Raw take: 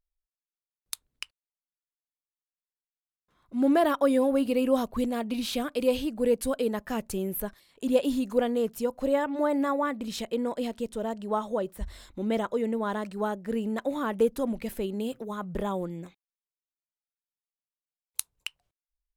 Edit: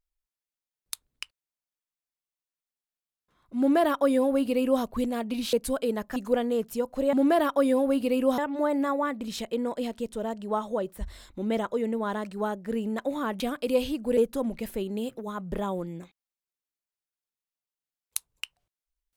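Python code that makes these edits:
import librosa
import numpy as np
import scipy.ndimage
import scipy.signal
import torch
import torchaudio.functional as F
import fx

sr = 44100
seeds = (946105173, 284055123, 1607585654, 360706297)

y = fx.edit(x, sr, fx.duplicate(start_s=3.58, length_s=1.25, to_s=9.18),
    fx.move(start_s=5.53, length_s=0.77, to_s=14.2),
    fx.cut(start_s=6.93, length_s=1.28), tone=tone)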